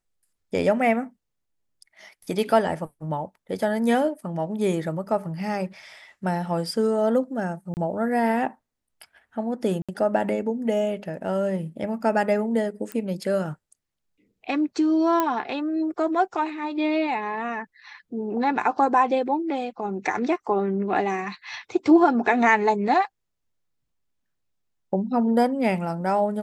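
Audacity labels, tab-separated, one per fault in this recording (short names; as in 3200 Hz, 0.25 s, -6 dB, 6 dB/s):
7.740000	7.770000	gap 29 ms
9.820000	9.890000	gap 66 ms
12.920000	12.920000	pop -18 dBFS
15.200000	15.200000	pop -9 dBFS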